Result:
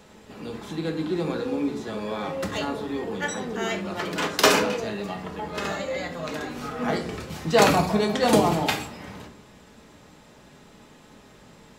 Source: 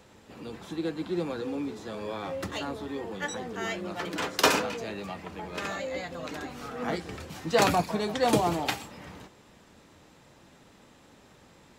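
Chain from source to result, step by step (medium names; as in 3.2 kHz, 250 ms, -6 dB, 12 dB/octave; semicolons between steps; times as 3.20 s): 4.80–5.81 s: band-stop 2.4 kHz, Q 8.8; simulated room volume 650 m³, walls furnished, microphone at 1.4 m; trim +3.5 dB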